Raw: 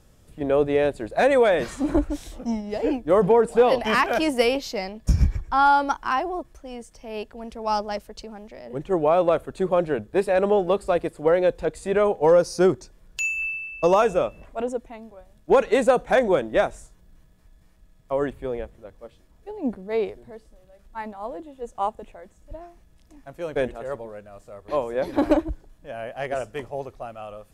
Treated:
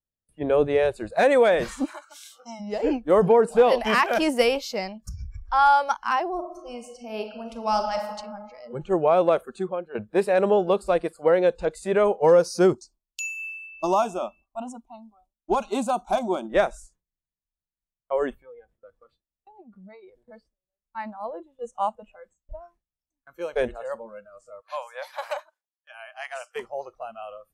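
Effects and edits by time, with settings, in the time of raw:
1.84–2.59 HPF 1400 Hz -> 560 Hz
4.96–5.52 compressor 5:1, threshold -33 dBFS
6.33–8.06 reverb throw, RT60 1.8 s, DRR 4 dB
9.5–9.95 fade out quadratic, to -13 dB
12.73–16.45 fixed phaser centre 490 Hz, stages 6
18.38–20.19 compressor 10:1, threshold -38 dBFS
24.61–26.56 Bessel high-pass 1000 Hz, order 6
whole clip: spectral noise reduction 20 dB; gate with hold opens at -52 dBFS

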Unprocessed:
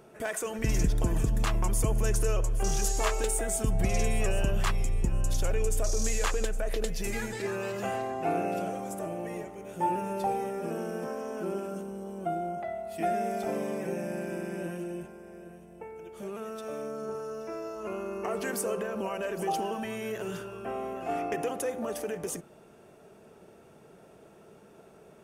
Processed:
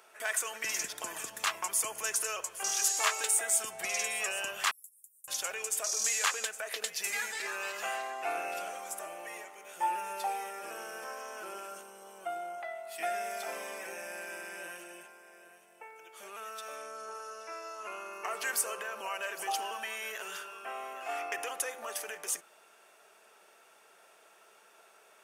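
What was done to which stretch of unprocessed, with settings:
4.71–5.28 inverse Chebyshev high-pass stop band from 2300 Hz, stop band 80 dB
16.76–18.12 steep low-pass 12000 Hz 48 dB/oct
whole clip: HPF 1200 Hz 12 dB/oct; gain +4.5 dB

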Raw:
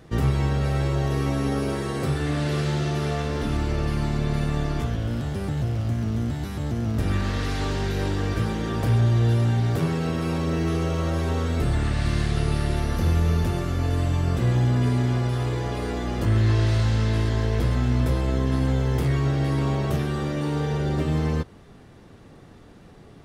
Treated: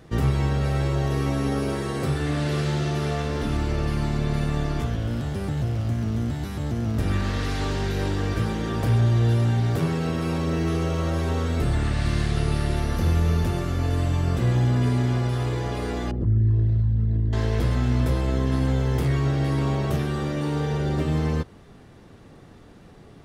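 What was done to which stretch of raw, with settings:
16.11–17.33 formant sharpening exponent 2

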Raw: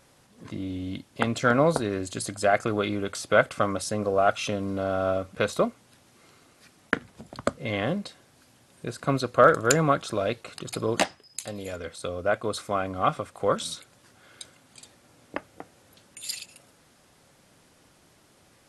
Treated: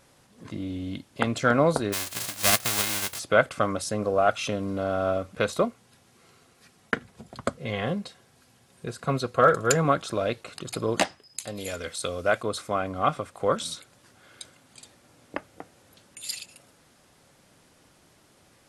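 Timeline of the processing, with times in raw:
1.92–3.18 spectral whitening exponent 0.1
5.63–9.85 notch comb 300 Hz
11.57–12.43 high shelf 2100 Hz +9.5 dB

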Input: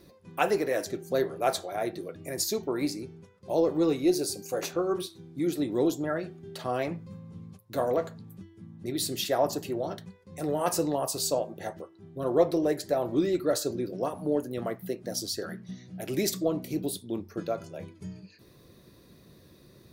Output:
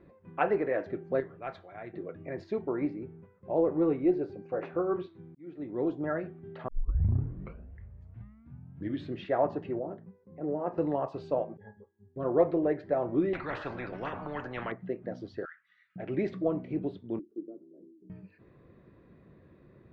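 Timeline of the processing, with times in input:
1.2–1.94 bell 520 Hz -13 dB 3 oct
2.61–4.8 high shelf 3700 Hz -11 dB
5.35–6.07 fade in
6.68 tape start 2.54 s
9.79–10.78 band-pass 320 Hz, Q 0.79
11.57–12.16 octave resonator G#, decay 0.15 s
13.33–14.72 spectral compressor 4:1
15.45–15.96 elliptic high-pass 1300 Hz, stop band 50 dB
17.19–18.1 Butterworth band-pass 310 Hz, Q 2.8
whole clip: LPF 2200 Hz 24 dB/oct; gain -1.5 dB

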